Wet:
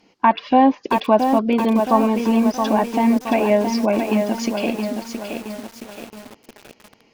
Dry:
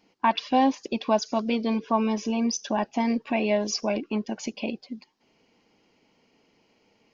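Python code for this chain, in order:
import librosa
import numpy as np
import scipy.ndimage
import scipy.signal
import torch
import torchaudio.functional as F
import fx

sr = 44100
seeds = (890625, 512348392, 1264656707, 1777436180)

y = fx.env_lowpass_down(x, sr, base_hz=2000.0, full_db=-21.5)
y = fx.echo_crushed(y, sr, ms=671, feedback_pct=55, bits=7, wet_db=-5.5)
y = F.gain(torch.from_numpy(y), 7.5).numpy()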